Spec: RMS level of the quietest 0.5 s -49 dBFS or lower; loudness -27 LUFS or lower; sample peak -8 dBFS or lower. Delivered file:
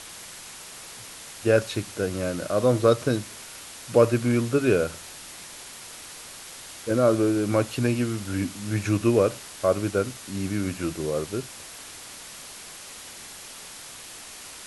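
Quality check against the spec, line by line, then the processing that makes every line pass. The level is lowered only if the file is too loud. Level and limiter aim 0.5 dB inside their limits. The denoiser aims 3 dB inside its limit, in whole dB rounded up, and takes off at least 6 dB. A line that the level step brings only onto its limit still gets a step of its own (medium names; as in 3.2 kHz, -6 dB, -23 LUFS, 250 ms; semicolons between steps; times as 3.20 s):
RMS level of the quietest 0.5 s -42 dBFS: fail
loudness -24.5 LUFS: fail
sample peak -5.0 dBFS: fail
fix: noise reduction 7 dB, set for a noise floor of -42 dBFS; trim -3 dB; peak limiter -8.5 dBFS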